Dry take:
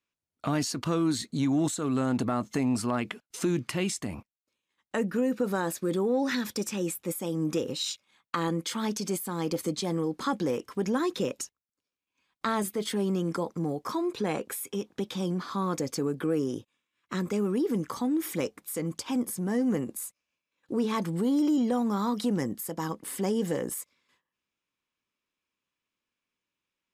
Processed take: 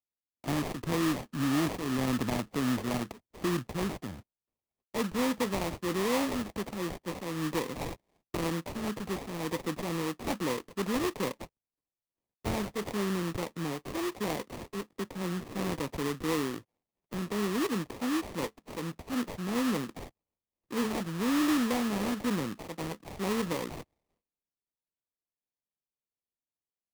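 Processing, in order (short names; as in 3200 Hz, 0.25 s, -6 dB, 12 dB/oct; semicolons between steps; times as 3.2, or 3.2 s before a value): sample-rate reducer 1500 Hz, jitter 20%; three-band expander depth 40%; gain -3 dB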